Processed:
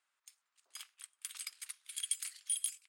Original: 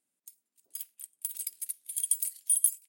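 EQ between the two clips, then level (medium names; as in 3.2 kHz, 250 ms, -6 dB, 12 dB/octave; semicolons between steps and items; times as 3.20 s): resonant high-pass 1.2 kHz, resonance Q 2.3; distance through air 120 m; +8.5 dB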